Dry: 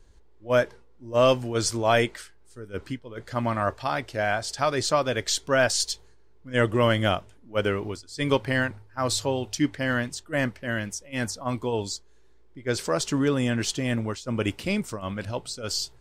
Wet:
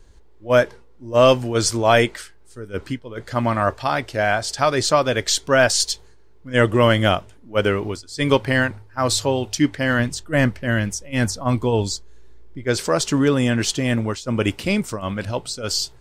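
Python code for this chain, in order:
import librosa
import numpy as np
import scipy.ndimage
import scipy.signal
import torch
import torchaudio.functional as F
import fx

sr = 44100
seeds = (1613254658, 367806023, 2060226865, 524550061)

y = fx.low_shelf(x, sr, hz=170.0, db=8.5, at=(9.99, 12.64))
y = F.gain(torch.from_numpy(y), 6.0).numpy()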